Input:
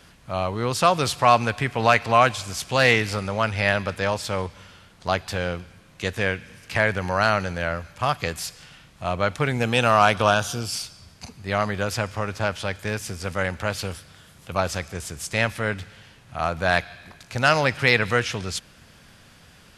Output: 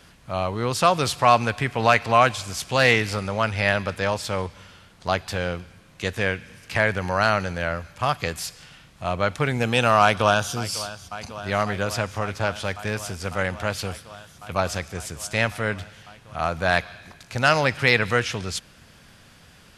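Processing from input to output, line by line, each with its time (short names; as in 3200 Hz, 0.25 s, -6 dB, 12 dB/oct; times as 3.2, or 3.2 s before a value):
10.01–10.53 echo throw 0.55 s, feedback 85%, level -15.5 dB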